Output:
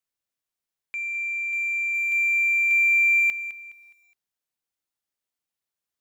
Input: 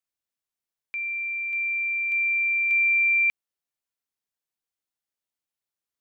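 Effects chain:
0:01.94–0:03.20: comb filter 1.8 ms, depth 76%
in parallel at −4 dB: soft clipping −31 dBFS, distortion −6 dB
on the sum: feedback echo at a low word length 208 ms, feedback 35%, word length 9 bits, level −13.5 dB
level −3 dB

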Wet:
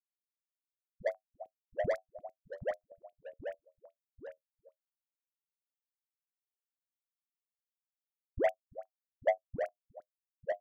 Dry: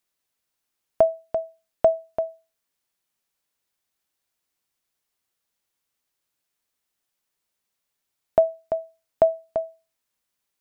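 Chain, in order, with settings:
spectral dynamics exaggerated over time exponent 3
dynamic equaliser 190 Hz, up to +6 dB, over −44 dBFS, Q 1.3
in parallel at +1.5 dB: downward compressor, threshold −28 dBFS, peak gain reduction 13 dB
on the sum: amplitude modulation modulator 97 Hz, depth 95%
all-pass dispersion highs, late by 115 ms, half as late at 620 Hz
soft clipping −21.5 dBFS, distortion −8 dB
delay with pitch and tempo change per echo 664 ms, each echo −1 semitone, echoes 3, each echo −6 dB
step-sequenced phaser 9.6 Hz 690–1,600 Hz

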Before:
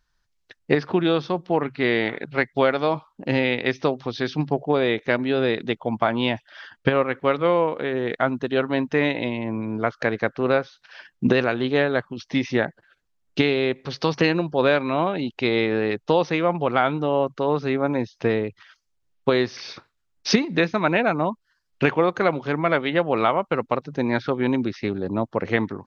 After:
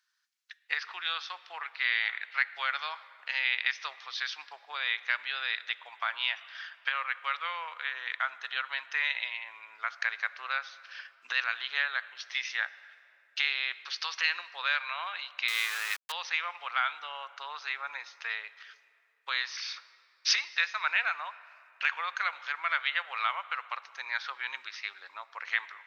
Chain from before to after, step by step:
convolution reverb RT60 2.8 s, pre-delay 8 ms, DRR 17 dB
in parallel at −3 dB: brickwall limiter −13.5 dBFS, peak gain reduction 11 dB
0:15.48–0:16.12: on the sum: centre clipping without the shift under −22.5 dBFS
high-pass filter 1,300 Hz 24 dB per octave
level −5 dB

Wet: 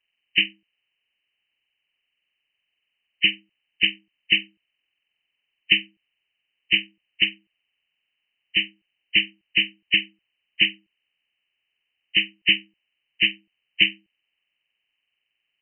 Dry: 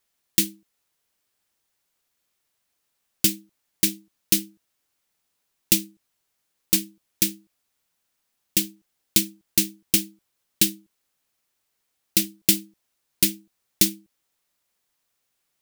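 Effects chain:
hearing-aid frequency compression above 1,600 Hz 4 to 1
dynamic equaliser 2,400 Hz, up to +4 dB, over −21 dBFS, Q 1.5
level −8.5 dB

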